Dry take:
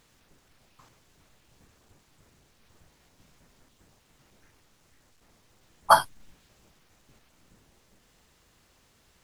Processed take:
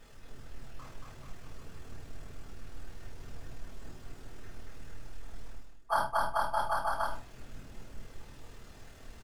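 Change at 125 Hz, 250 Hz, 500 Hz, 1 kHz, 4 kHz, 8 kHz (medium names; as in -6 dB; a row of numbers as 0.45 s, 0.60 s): +7.0 dB, +3.0 dB, -4.0 dB, -5.0 dB, -8.5 dB, -9.0 dB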